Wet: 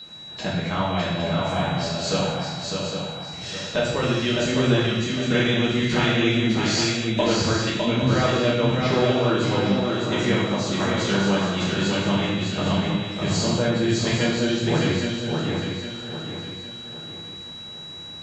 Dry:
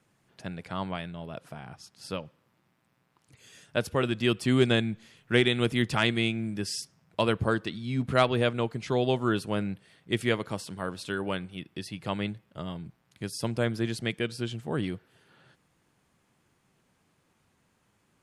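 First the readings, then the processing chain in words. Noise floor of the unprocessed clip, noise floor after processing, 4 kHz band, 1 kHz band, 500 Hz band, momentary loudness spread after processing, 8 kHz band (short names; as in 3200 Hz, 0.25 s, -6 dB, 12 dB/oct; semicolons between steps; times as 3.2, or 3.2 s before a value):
-71 dBFS, -38 dBFS, +9.5 dB, +7.5 dB, +7.0 dB, 12 LU, +12.0 dB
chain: nonlinear frequency compression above 3500 Hz 1.5:1; in parallel at 0 dB: limiter -20 dBFS, peak gain reduction 10.5 dB; on the sum: compressor 3:1, threshold -37 dBFS, peak gain reduction 17 dB; whine 3900 Hz -47 dBFS; on a send: swung echo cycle 0.809 s, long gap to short 3:1, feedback 39%, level -4 dB; on the sum: non-linear reverb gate 0.31 s falling, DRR -7 dB; gain +6 dB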